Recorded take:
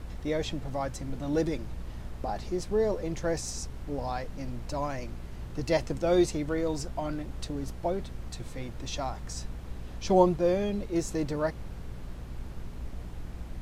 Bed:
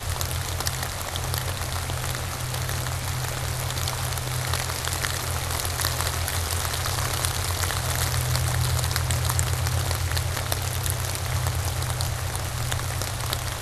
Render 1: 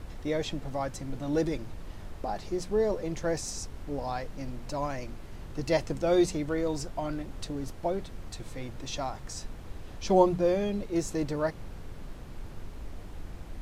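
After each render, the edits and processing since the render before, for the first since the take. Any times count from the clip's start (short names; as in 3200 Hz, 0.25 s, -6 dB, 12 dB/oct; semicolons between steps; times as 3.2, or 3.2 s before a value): de-hum 60 Hz, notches 4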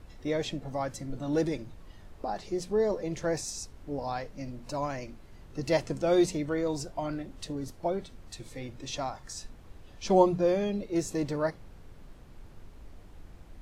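noise print and reduce 8 dB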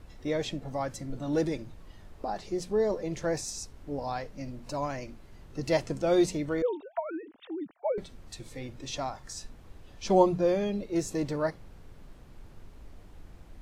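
6.62–7.98 sine-wave speech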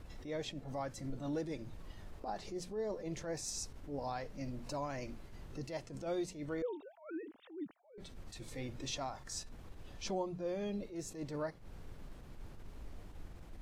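compressor 4:1, threshold -37 dBFS, peak gain reduction 18 dB; attack slew limiter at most 130 dB/s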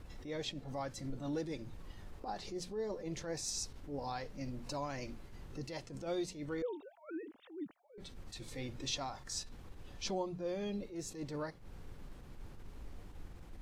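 notch 640 Hz, Q 12; dynamic EQ 4100 Hz, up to +5 dB, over -59 dBFS, Q 1.3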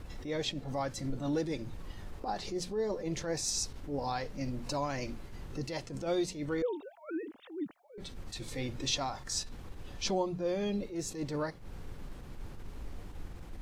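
gain +6 dB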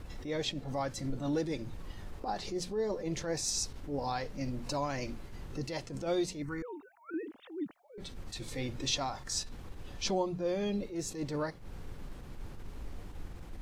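6.42–7.14 fixed phaser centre 1400 Hz, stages 4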